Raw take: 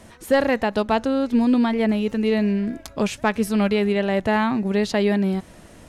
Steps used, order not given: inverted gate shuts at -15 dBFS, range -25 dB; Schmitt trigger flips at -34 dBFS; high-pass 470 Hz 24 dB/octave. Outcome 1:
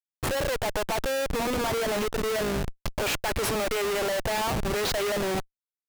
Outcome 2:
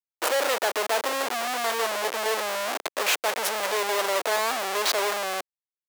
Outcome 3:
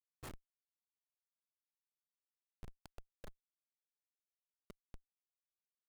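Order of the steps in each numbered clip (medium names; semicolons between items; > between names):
high-pass > Schmitt trigger > inverted gate; Schmitt trigger > inverted gate > high-pass; inverted gate > high-pass > Schmitt trigger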